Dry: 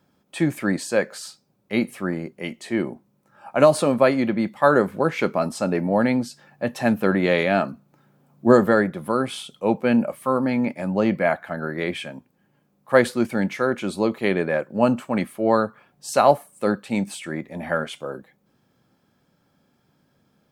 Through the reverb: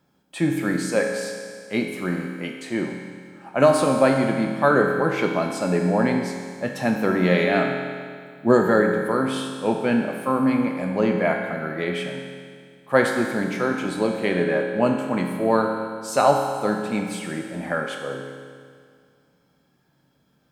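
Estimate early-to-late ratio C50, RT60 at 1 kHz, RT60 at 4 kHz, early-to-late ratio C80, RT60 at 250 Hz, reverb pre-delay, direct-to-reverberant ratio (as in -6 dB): 3.5 dB, 2.0 s, 2.0 s, 5.0 dB, 2.0 s, 7 ms, 1.5 dB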